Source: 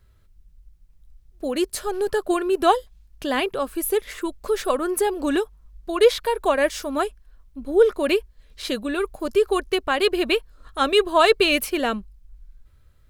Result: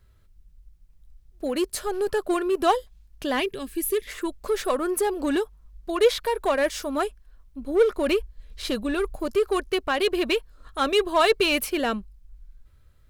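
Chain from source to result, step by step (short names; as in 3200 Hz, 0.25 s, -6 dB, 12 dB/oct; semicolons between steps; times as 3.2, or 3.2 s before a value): 3.42–4.07 spectral gain 450–1600 Hz -13 dB; 7.98–9.24 low shelf 120 Hz +9 dB; in parallel at -10 dB: wavefolder -20 dBFS; on the sum: gain -3.5 dB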